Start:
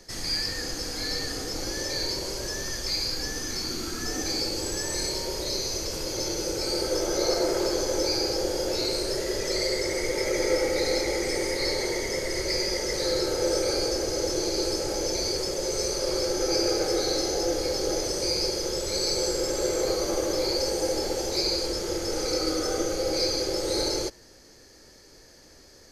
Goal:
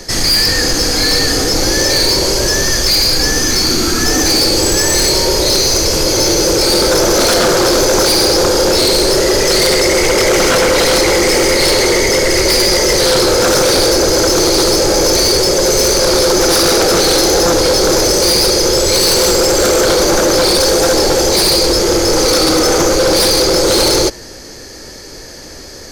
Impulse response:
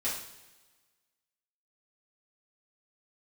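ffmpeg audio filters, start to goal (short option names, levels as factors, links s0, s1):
-af "aeval=exprs='0.251*sin(PI/2*3.98*val(0)/0.251)':c=same,volume=1.68"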